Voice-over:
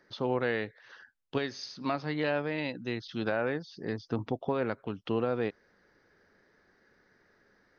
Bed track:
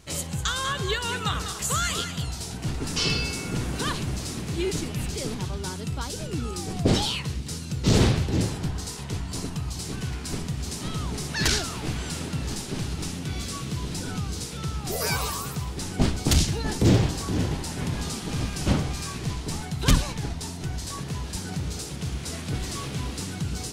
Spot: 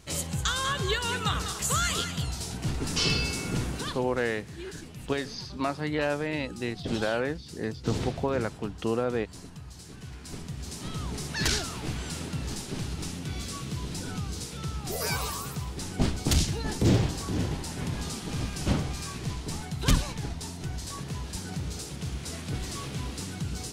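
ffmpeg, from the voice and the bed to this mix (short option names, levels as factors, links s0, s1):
-filter_complex "[0:a]adelay=3750,volume=1.26[s0];[1:a]volume=2.66,afade=t=out:st=3.59:d=0.41:silence=0.251189,afade=t=in:st=9.96:d=1.19:silence=0.334965[s1];[s0][s1]amix=inputs=2:normalize=0"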